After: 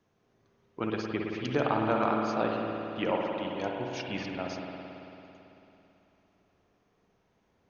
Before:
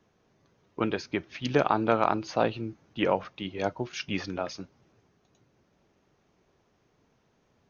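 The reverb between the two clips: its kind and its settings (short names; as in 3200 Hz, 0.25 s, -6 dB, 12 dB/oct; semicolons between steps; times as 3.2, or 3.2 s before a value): spring tank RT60 3.2 s, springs 55 ms, chirp 50 ms, DRR -0.5 dB; gain -5.5 dB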